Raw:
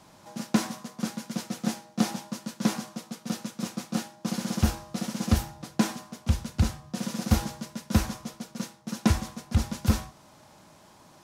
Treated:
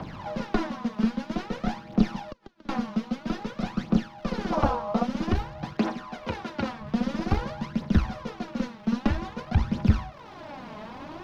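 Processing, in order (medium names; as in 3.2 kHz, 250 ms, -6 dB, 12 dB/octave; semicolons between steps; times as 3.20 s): single-diode clipper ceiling -22.5 dBFS; 4.52–5.03 s: high-order bell 780 Hz +12.5 dB; 5.73–6.81 s: high-pass 290 Hz 12 dB/octave; in parallel at +2 dB: compression, threshold -36 dBFS, peak gain reduction 17.5 dB; on the sum: crackle 440 per s -37 dBFS; 2.18–2.69 s: inverted gate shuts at -23 dBFS, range -31 dB; phaser 0.51 Hz, delay 4.8 ms, feedback 65%; distance through air 290 m; three bands compressed up and down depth 40%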